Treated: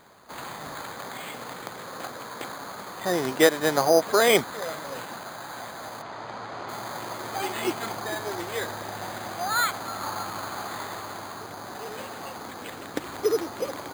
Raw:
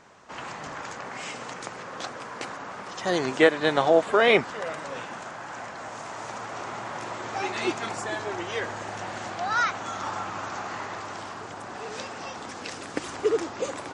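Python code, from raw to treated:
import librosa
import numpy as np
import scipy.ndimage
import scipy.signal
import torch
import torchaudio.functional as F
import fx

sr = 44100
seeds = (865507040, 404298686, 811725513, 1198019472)

y = np.repeat(scipy.signal.resample_poly(x, 1, 8), 8)[:len(x)]
y = fx.air_absorb(y, sr, metres=130.0, at=(6.01, 6.68), fade=0.02)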